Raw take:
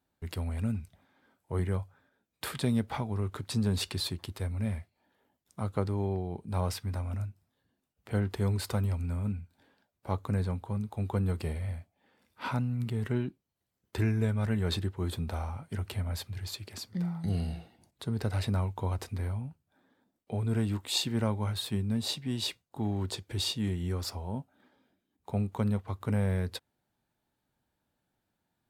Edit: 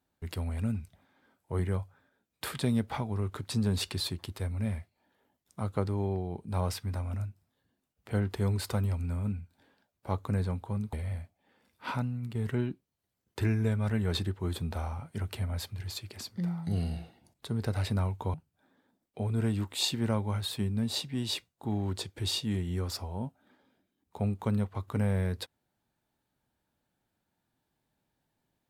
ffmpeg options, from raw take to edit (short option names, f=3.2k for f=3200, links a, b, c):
-filter_complex "[0:a]asplit=4[a][b][c][d];[a]atrim=end=10.932[e];[b]atrim=start=11.498:end=12.92,asetpts=PTS-STARTPTS,afade=t=out:st=0.942:d=0.48:silence=0.473151[f];[c]atrim=start=12.92:end=18.912,asetpts=PTS-STARTPTS,afade=t=in:d=0.004:c=hsin:silence=0.473151[g];[d]atrim=start=19.468[h];[f][g]concat=n=2:v=0:a=1[i];[e][i]acrossfade=d=0.004:c1=hsin:c2=hsin[j];[j][h]acrossfade=d=0.004:c1=hsin:c2=hsin"